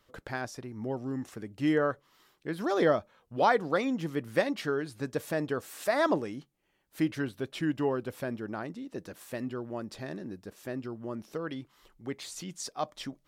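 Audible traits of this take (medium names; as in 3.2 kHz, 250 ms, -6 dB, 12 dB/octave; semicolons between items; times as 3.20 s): noise floor -72 dBFS; spectral tilt -4.5 dB/octave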